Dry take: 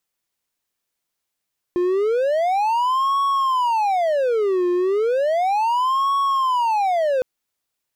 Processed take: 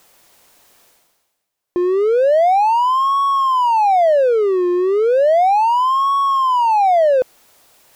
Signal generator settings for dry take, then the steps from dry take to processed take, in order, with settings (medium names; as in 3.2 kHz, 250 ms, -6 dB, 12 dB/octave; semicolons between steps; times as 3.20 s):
siren wail 354–1110 Hz 0.34 per s triangle -14.5 dBFS 5.46 s
peaking EQ 650 Hz +7 dB 1.6 oct; reverse; upward compressor, threshold -30 dBFS; reverse